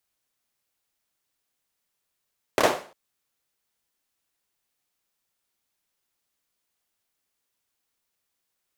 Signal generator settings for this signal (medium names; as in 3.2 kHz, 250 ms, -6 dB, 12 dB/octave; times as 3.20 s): hand clap length 0.35 s, bursts 3, apart 27 ms, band 570 Hz, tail 0.41 s